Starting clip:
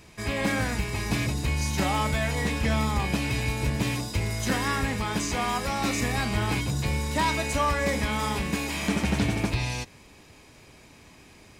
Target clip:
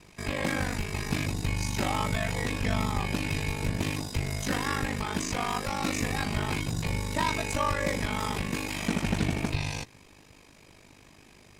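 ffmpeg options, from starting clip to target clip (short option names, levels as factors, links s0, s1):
-af "aeval=exprs='val(0)*sin(2*PI*25*n/s)':c=same"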